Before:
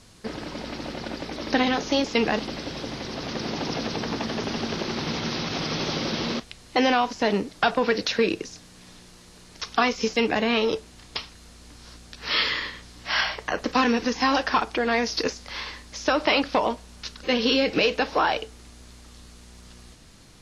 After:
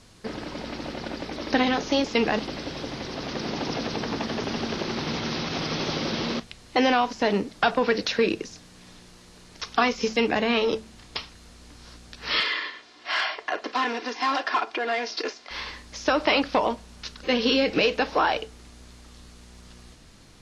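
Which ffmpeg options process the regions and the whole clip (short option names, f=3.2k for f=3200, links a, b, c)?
-filter_complex "[0:a]asettb=1/sr,asplit=3[a][b][c];[a]atrim=end=12.404[d];[b]atrim=start=12.4:end=15.51,asetpts=PTS-STARTPTS,afade=t=in:d=0.004:c=qsin,afade=t=out:st=3.106:d=0.004:c=qsin,asoftclip=type=hard:threshold=-19.5dB,highpass=410,lowpass=4.8k,aecho=1:1:2.9:0.43,atrim=end_sample=137151[e];[c]atrim=start=15.506[f];[d][e]acrossfade=d=0.004:c1=hsin:c2=qsin[g];[g][f]acrossfade=d=0.004:c1=qsin:c2=hsin,highshelf=f=6.6k:g=-4.5,bandreject=f=55.19:t=h:w=4,bandreject=f=110.38:t=h:w=4,bandreject=f=165.57:t=h:w=4,bandreject=f=220.76:t=h:w=4"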